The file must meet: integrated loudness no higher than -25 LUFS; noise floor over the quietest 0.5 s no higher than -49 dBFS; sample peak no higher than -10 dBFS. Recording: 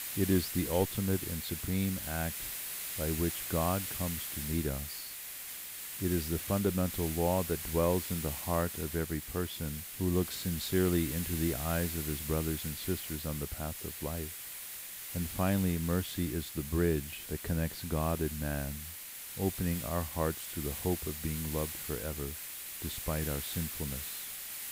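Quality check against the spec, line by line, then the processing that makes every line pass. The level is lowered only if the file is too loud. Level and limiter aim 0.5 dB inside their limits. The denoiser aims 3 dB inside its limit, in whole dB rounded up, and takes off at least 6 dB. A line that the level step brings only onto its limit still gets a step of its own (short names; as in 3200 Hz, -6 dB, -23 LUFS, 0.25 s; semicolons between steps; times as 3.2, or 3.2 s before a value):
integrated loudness -34.0 LUFS: OK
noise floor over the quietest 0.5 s -45 dBFS: fail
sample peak -16.5 dBFS: OK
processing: denoiser 7 dB, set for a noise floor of -45 dBFS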